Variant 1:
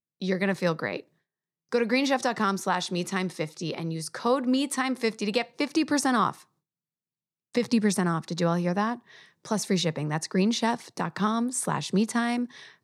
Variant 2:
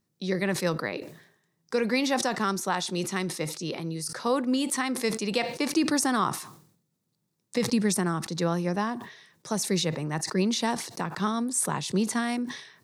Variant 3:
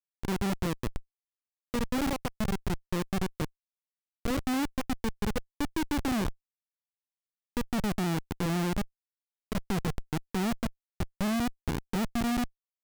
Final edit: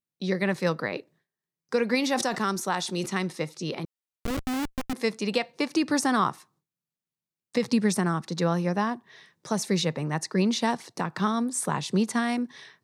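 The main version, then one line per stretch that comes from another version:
1
1.95–3.06 from 2
3.85–4.93 from 3

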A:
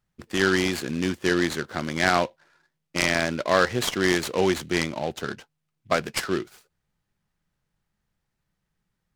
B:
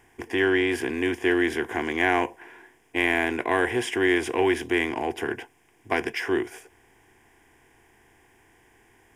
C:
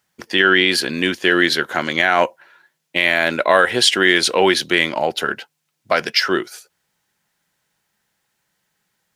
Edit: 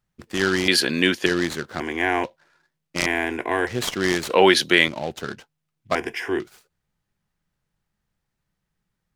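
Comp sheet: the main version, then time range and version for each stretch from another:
A
0.68–1.26 from C
1.8–2.24 from B
3.06–3.67 from B
4.3–4.88 from C
5.95–6.4 from B

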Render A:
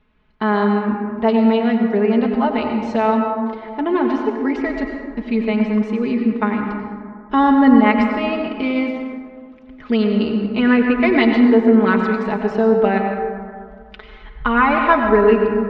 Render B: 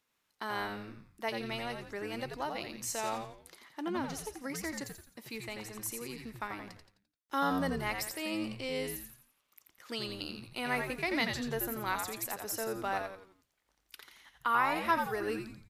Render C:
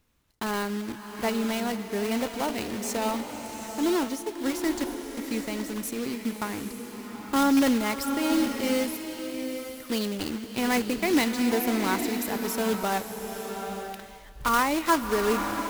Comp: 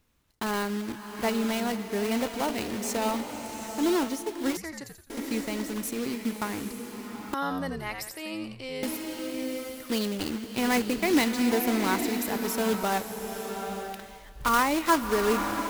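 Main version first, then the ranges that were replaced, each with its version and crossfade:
C
4.57–5.1 from B
7.34–8.83 from B
not used: A

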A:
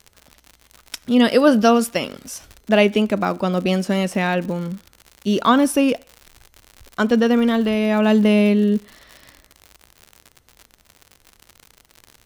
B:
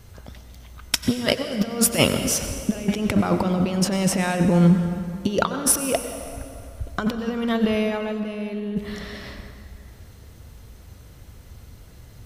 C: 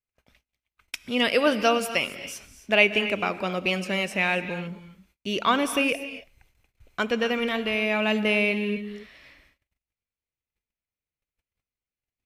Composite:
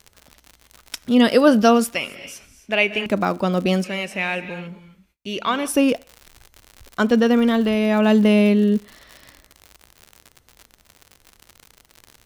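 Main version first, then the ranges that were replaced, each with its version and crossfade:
A
1.95–3.06 from C
3.84–5.68 from C
not used: B

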